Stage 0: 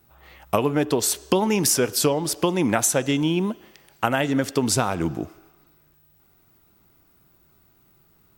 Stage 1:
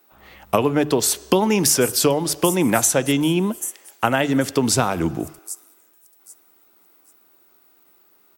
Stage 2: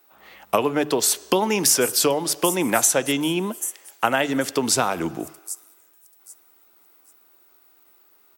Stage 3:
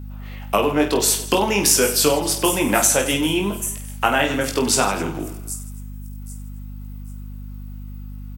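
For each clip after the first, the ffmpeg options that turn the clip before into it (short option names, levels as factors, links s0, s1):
-filter_complex "[0:a]bandreject=f=50:t=h:w=6,bandreject=f=100:t=h:w=6,bandreject=f=150:t=h:w=6,acrossover=split=260|7900[s0][s1][s2];[s0]aeval=exprs='val(0)*gte(abs(val(0)),0.00211)':c=same[s3];[s2]aecho=1:1:787|1574|2361:0.631|0.151|0.0363[s4];[s3][s1][s4]amix=inputs=3:normalize=0,volume=1.41"
-af "highpass=f=380:p=1"
-filter_complex "[0:a]asplit=2[s0][s1];[s1]aecho=0:1:20|50|95|162.5|263.8:0.631|0.398|0.251|0.158|0.1[s2];[s0][s2]amix=inputs=2:normalize=0,aeval=exprs='val(0)+0.0251*(sin(2*PI*50*n/s)+sin(2*PI*2*50*n/s)/2+sin(2*PI*3*50*n/s)/3+sin(2*PI*4*50*n/s)/4+sin(2*PI*5*50*n/s)/5)':c=same,equalizer=f=2700:w=3.3:g=3.5"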